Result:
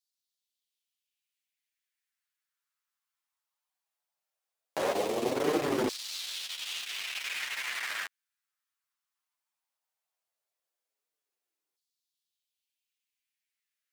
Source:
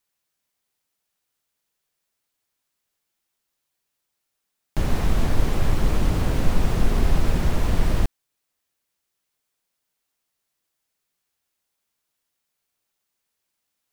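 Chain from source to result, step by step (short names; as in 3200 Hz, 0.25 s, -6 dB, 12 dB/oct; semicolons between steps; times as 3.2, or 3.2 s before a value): self-modulated delay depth 0.46 ms; 4.93–5.35 bell 1500 Hz -10.5 dB 0.76 oct; sample leveller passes 2; LFO high-pass saw down 0.17 Hz 320–4500 Hz; flange 0.54 Hz, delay 6.3 ms, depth 5.9 ms, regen +4%; gain -3.5 dB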